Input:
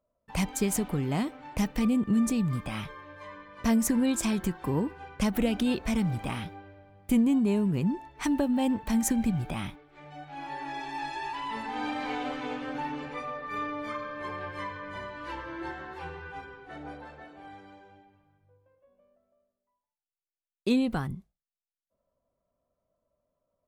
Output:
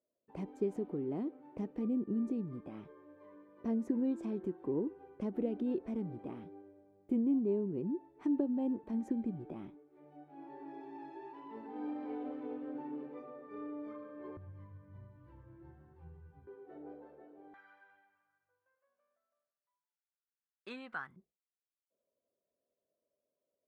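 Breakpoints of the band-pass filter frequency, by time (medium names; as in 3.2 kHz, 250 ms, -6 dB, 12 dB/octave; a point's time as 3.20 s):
band-pass filter, Q 3.1
360 Hz
from 14.37 s 110 Hz
from 16.47 s 390 Hz
from 17.54 s 1.5 kHz
from 21.16 s 400 Hz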